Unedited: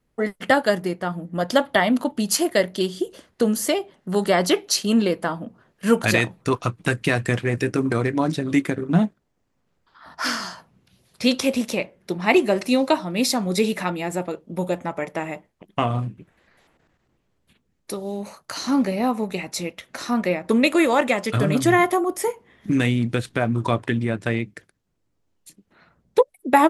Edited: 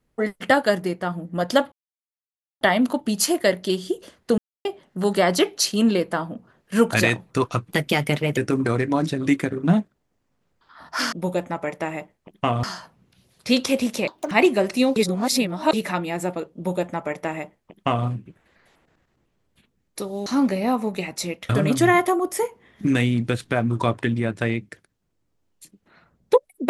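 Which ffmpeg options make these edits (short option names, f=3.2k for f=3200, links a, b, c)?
-filter_complex "[0:a]asplit=14[a][b][c][d][e][f][g][h][i][j][k][l][m][n];[a]atrim=end=1.72,asetpts=PTS-STARTPTS,afade=t=out:st=1.716:d=0.004:c=hsin,apad=pad_dur=0.89[o];[b]atrim=start=1.72:end=3.49,asetpts=PTS-STARTPTS,afade=t=in:d=0.004:c=hsin,afade=t=out:st=1.766:d=0.004:c=hsin[p];[c]atrim=start=3.49:end=3.76,asetpts=PTS-STARTPTS,volume=0[q];[d]atrim=start=3.76:end=6.824,asetpts=PTS-STARTPTS,afade=t=in:d=0.004:c=hsin[r];[e]atrim=start=6.82:end=7.63,asetpts=PTS-STARTPTS,asetrate=53802,aresample=44100[s];[f]atrim=start=7.626:end=10.382[t];[g]atrim=start=14.468:end=15.982[u];[h]atrim=start=10.378:end=11.824[v];[i]atrim=start=11.82:end=12.23,asetpts=PTS-STARTPTS,asetrate=75852,aresample=44100,atrim=end_sample=10512,asetpts=PTS-STARTPTS[w];[j]atrim=start=12.226:end=12.882[x];[k]atrim=start=12.878:end=13.652,asetpts=PTS-STARTPTS,areverse[y];[l]atrim=start=13.648:end=18.182[z];[m]atrim=start=18.618:end=19.852[aa];[n]atrim=start=21.338[ab];[o][p][q][r]concat=n=4:v=0:a=1[ac];[ac][s]acrossfade=d=0.004:c1=hsin:c2=hsin[ad];[ad][t]acrossfade=d=0.004:c1=hsin:c2=hsin[ae];[ae][u]acrossfade=d=0.004:c1=hsin:c2=hsin[af];[af][v]acrossfade=d=0.004:c1=hsin:c2=hsin[ag];[ag][w]acrossfade=d=0.004:c1=hsin:c2=hsin[ah];[ah][x]acrossfade=d=0.004:c1=hsin:c2=hsin[ai];[ai][y]acrossfade=d=0.004:c1=hsin:c2=hsin[aj];[aj][z]acrossfade=d=0.004:c1=hsin:c2=hsin[ak];[ak][aa]acrossfade=d=0.004:c1=hsin:c2=hsin[al];[al][ab]acrossfade=d=0.004:c1=hsin:c2=hsin"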